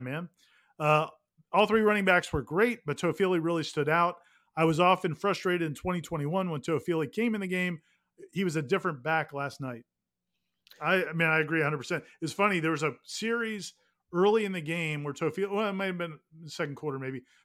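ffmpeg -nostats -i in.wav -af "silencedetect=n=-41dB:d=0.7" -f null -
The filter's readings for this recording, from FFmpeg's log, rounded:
silence_start: 9.79
silence_end: 10.67 | silence_duration: 0.88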